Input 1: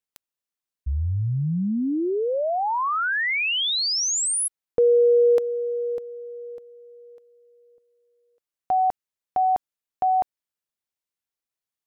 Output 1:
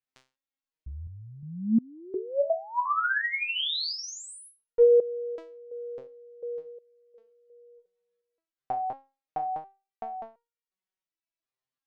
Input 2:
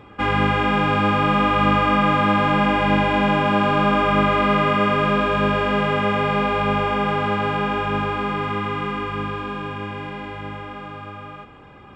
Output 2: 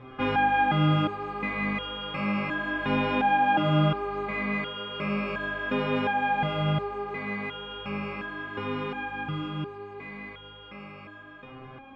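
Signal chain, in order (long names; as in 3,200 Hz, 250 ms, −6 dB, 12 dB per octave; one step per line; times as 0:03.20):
in parallel at −3 dB: downward compressor, threshold −31 dBFS
on the sum: high-frequency loss of the air 130 metres
step-sequenced resonator 2.8 Hz 130–470 Hz
level +6.5 dB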